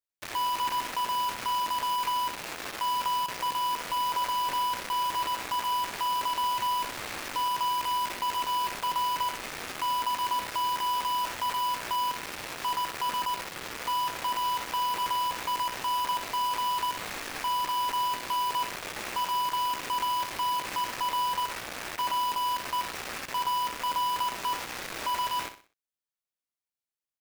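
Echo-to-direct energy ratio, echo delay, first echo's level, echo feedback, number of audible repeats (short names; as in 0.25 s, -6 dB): -10.0 dB, 62 ms, -10.5 dB, 34%, 3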